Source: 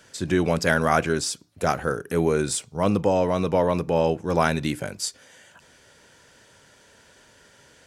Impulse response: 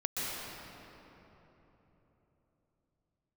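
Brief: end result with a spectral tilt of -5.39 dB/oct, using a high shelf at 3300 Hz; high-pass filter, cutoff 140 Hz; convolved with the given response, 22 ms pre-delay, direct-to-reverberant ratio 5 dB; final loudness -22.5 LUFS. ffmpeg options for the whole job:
-filter_complex "[0:a]highpass=140,highshelf=f=3.3k:g=-8,asplit=2[a][b];[1:a]atrim=start_sample=2205,adelay=22[c];[b][c]afir=irnorm=-1:irlink=0,volume=-11.5dB[d];[a][d]amix=inputs=2:normalize=0,volume=1dB"

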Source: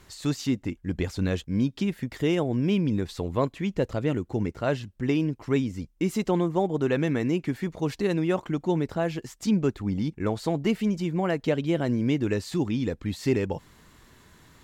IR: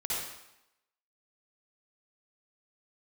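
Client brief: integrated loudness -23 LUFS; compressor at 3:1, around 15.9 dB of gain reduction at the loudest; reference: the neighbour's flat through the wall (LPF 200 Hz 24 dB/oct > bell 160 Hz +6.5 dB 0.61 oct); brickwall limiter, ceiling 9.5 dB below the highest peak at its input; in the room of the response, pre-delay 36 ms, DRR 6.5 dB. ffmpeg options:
-filter_complex "[0:a]acompressor=threshold=-42dB:ratio=3,alimiter=level_in=11.5dB:limit=-24dB:level=0:latency=1,volume=-11.5dB,asplit=2[a][b];[1:a]atrim=start_sample=2205,adelay=36[c];[b][c]afir=irnorm=-1:irlink=0,volume=-12dB[d];[a][d]amix=inputs=2:normalize=0,lowpass=f=200:w=0.5412,lowpass=f=200:w=1.3066,equalizer=f=160:t=o:w=0.61:g=6.5,volume=22.5dB"

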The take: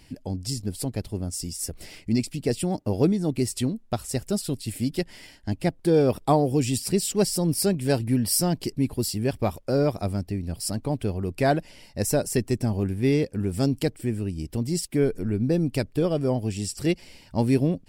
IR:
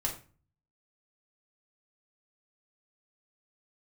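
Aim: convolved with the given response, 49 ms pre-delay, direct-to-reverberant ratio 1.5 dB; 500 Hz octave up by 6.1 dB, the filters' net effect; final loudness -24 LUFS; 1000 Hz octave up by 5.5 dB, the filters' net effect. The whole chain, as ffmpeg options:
-filter_complex "[0:a]equalizer=f=500:t=o:g=6.5,equalizer=f=1k:t=o:g=4.5,asplit=2[a][b];[1:a]atrim=start_sample=2205,adelay=49[c];[b][c]afir=irnorm=-1:irlink=0,volume=-5.5dB[d];[a][d]amix=inputs=2:normalize=0,volume=-4dB"

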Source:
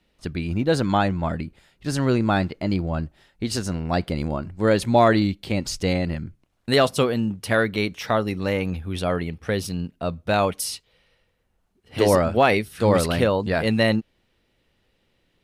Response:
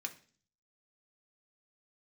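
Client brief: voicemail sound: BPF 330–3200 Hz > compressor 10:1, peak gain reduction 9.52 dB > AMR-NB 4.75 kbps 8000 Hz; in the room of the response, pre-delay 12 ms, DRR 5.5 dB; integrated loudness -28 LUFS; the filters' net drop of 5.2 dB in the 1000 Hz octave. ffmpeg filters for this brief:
-filter_complex "[0:a]equalizer=f=1k:t=o:g=-7.5,asplit=2[a][b];[1:a]atrim=start_sample=2205,adelay=12[c];[b][c]afir=irnorm=-1:irlink=0,volume=-4.5dB[d];[a][d]amix=inputs=2:normalize=0,highpass=330,lowpass=3.2k,acompressor=threshold=-23dB:ratio=10,volume=4.5dB" -ar 8000 -c:a libopencore_amrnb -b:a 4750

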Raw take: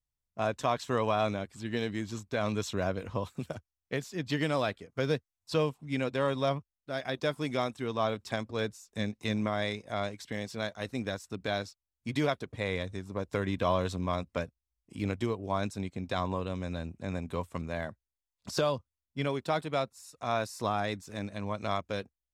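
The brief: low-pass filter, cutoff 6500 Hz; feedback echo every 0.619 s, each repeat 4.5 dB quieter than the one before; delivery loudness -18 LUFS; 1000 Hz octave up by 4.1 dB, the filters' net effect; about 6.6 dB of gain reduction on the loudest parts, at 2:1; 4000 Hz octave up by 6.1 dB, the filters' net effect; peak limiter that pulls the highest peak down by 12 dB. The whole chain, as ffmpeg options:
-af "lowpass=6.5k,equalizer=f=1k:t=o:g=5,equalizer=f=4k:t=o:g=7.5,acompressor=threshold=-33dB:ratio=2,alimiter=level_in=3.5dB:limit=-24dB:level=0:latency=1,volume=-3.5dB,aecho=1:1:619|1238|1857|2476|3095|3714|4333|4952|5571:0.596|0.357|0.214|0.129|0.0772|0.0463|0.0278|0.0167|0.01,volume=21dB"

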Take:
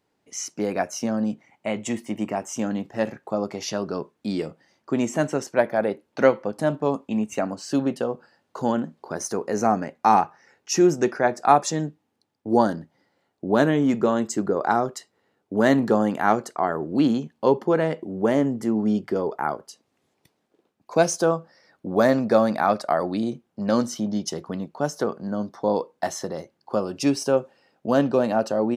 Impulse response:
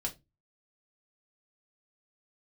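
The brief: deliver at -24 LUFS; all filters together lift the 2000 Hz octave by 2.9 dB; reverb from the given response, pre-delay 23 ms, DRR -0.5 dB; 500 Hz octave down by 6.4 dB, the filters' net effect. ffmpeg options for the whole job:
-filter_complex "[0:a]equalizer=f=500:t=o:g=-8.5,equalizer=f=2k:t=o:g=4.5,asplit=2[a][b];[1:a]atrim=start_sample=2205,adelay=23[c];[b][c]afir=irnorm=-1:irlink=0,volume=-1dB[d];[a][d]amix=inputs=2:normalize=0,volume=-1dB"

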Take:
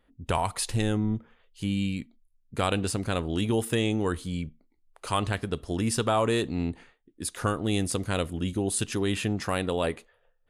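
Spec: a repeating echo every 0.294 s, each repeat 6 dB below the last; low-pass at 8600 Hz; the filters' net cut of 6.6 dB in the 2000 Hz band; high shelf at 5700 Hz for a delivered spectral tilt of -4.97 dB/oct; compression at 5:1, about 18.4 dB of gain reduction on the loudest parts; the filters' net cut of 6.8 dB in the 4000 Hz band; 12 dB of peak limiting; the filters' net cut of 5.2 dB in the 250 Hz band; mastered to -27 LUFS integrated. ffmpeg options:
-af "lowpass=8.6k,equalizer=f=250:t=o:g=-7,equalizer=f=2k:t=o:g=-7.5,equalizer=f=4k:t=o:g=-7.5,highshelf=f=5.7k:g=4.5,acompressor=threshold=-45dB:ratio=5,alimiter=level_in=18dB:limit=-24dB:level=0:latency=1,volume=-18dB,aecho=1:1:294|588|882|1176|1470|1764:0.501|0.251|0.125|0.0626|0.0313|0.0157,volume=25dB"

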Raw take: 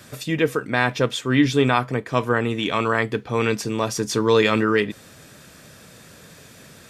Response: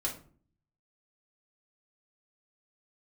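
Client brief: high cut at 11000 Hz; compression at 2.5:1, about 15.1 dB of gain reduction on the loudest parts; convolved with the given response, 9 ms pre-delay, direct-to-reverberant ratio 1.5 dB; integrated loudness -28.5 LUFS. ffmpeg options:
-filter_complex "[0:a]lowpass=11k,acompressor=threshold=-36dB:ratio=2.5,asplit=2[a][b];[1:a]atrim=start_sample=2205,adelay=9[c];[b][c]afir=irnorm=-1:irlink=0,volume=-5dB[d];[a][d]amix=inputs=2:normalize=0,volume=3dB"

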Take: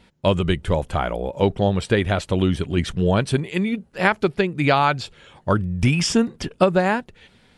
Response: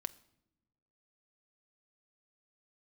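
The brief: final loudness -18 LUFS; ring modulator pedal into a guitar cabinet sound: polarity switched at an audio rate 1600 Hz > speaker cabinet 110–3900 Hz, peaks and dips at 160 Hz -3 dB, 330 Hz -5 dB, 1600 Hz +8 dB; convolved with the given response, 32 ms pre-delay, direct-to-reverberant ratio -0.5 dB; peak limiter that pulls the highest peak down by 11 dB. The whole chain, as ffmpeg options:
-filter_complex "[0:a]alimiter=limit=-14dB:level=0:latency=1,asplit=2[a][b];[1:a]atrim=start_sample=2205,adelay=32[c];[b][c]afir=irnorm=-1:irlink=0,volume=2.5dB[d];[a][d]amix=inputs=2:normalize=0,aeval=exprs='val(0)*sgn(sin(2*PI*1600*n/s))':c=same,highpass=110,equalizer=f=160:t=q:w=4:g=-3,equalizer=f=330:t=q:w=4:g=-5,equalizer=f=1.6k:t=q:w=4:g=8,lowpass=f=3.9k:w=0.5412,lowpass=f=3.9k:w=1.3066,volume=-1dB"

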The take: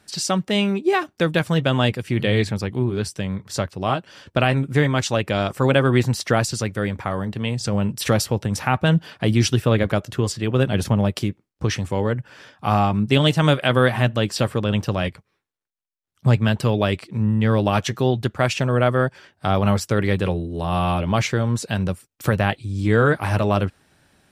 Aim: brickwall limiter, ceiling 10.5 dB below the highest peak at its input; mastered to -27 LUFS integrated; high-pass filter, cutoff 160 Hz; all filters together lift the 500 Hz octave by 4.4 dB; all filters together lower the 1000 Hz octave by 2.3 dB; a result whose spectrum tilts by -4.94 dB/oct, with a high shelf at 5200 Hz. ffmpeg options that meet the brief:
-af "highpass=160,equalizer=f=500:t=o:g=7,equalizer=f=1k:t=o:g=-6.5,highshelf=f=5.2k:g=3.5,volume=-3dB,alimiter=limit=-15dB:level=0:latency=1"

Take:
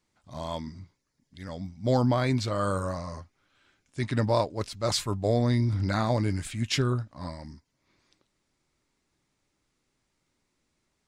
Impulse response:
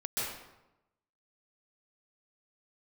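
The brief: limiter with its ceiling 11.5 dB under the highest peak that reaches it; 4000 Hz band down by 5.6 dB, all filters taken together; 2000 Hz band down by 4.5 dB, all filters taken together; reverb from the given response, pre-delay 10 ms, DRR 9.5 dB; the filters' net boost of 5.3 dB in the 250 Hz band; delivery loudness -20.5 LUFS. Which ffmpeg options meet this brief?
-filter_complex "[0:a]equalizer=f=250:t=o:g=6,equalizer=f=2k:t=o:g=-4.5,equalizer=f=4k:t=o:g=-6,alimiter=limit=-23dB:level=0:latency=1,asplit=2[a][b];[1:a]atrim=start_sample=2205,adelay=10[c];[b][c]afir=irnorm=-1:irlink=0,volume=-15dB[d];[a][d]amix=inputs=2:normalize=0,volume=12dB"

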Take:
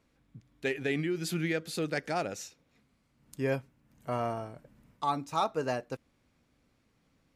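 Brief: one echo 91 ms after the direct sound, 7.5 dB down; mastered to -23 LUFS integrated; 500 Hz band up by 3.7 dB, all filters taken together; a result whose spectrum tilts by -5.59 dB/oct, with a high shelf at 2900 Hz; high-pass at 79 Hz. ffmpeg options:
-af "highpass=79,equalizer=f=500:t=o:g=5,highshelf=f=2.9k:g=-8,aecho=1:1:91:0.422,volume=8.5dB"

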